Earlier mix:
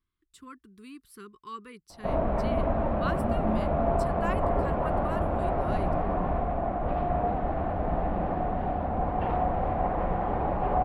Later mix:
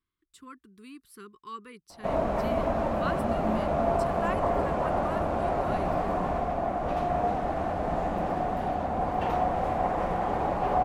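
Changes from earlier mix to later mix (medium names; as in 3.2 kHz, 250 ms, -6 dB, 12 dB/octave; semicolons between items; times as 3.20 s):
background: remove distance through air 370 m; master: add bass shelf 91 Hz -8.5 dB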